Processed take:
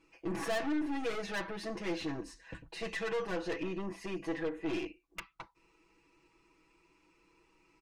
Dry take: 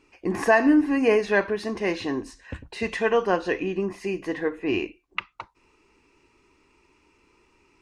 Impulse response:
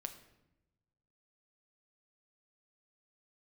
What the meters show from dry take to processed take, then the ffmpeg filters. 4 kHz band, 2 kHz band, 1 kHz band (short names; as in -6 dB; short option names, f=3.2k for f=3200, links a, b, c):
-7.0 dB, -13.0 dB, -13.5 dB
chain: -af "aeval=exprs='(tanh(22.4*val(0)+0.35)-tanh(0.35))/22.4':c=same,aecho=1:1:6.1:0.97,volume=-8dB"